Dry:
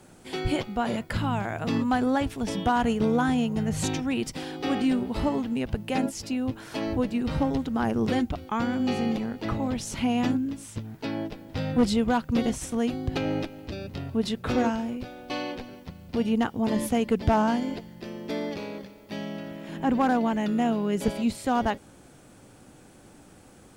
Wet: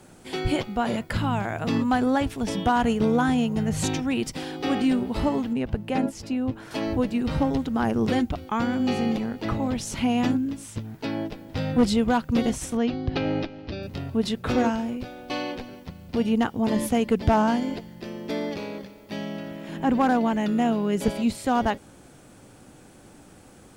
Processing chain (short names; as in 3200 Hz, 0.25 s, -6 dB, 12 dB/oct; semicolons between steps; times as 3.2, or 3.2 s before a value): 5.53–6.71 high shelf 2900 Hz -8.5 dB; 12.77–13.83 steep low-pass 5500 Hz 36 dB/oct; gain +2 dB